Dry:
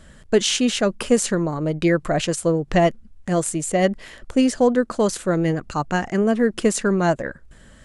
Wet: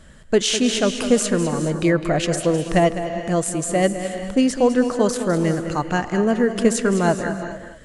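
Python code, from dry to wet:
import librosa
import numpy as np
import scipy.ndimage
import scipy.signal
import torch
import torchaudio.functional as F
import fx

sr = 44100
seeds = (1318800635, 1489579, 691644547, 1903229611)

p1 = x + fx.echo_single(x, sr, ms=205, db=-11.0, dry=0)
y = fx.rev_gated(p1, sr, seeds[0], gate_ms=460, shape='rising', drr_db=10.0)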